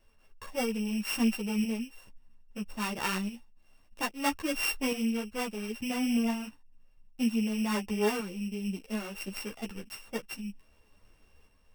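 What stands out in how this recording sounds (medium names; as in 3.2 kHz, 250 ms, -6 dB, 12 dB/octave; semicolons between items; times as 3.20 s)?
a buzz of ramps at a fixed pitch in blocks of 16 samples; tremolo saw up 0.61 Hz, depth 45%; a shimmering, thickened sound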